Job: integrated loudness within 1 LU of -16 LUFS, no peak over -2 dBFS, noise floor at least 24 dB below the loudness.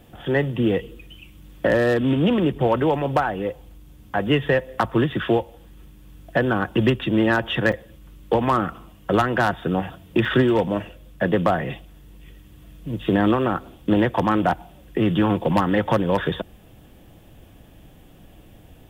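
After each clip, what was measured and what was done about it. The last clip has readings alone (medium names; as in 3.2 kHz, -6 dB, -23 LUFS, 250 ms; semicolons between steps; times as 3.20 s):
dropouts 2; longest dropout 5.0 ms; loudness -22.0 LUFS; peak level -6.5 dBFS; loudness target -16.0 LUFS
-> interpolate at 7.72/10.25 s, 5 ms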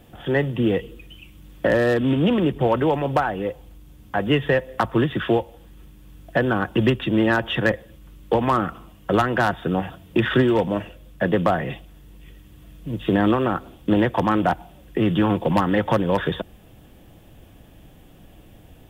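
dropouts 0; loudness -22.0 LUFS; peak level -6.5 dBFS; loudness target -16.0 LUFS
-> trim +6 dB; peak limiter -2 dBFS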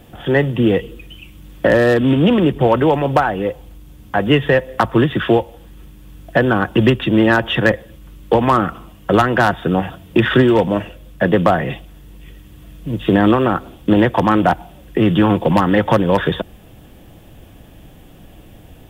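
loudness -16.0 LUFS; peak level -2.0 dBFS; noise floor -43 dBFS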